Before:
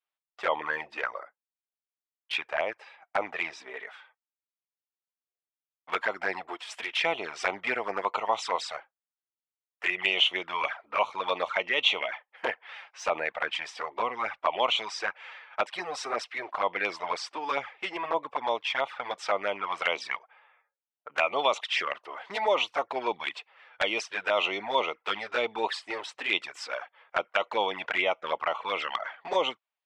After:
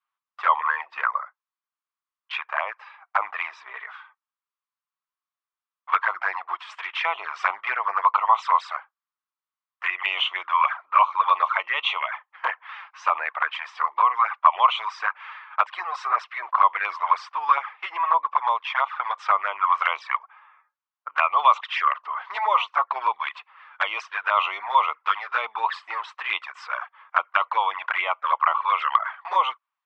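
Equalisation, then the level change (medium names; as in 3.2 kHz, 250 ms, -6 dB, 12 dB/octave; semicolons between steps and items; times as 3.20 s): dynamic bell 4.9 kHz, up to -4 dB, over -44 dBFS, Q 1.1; resonant high-pass 1.1 kHz, resonance Q 4.9; distance through air 140 m; +2.0 dB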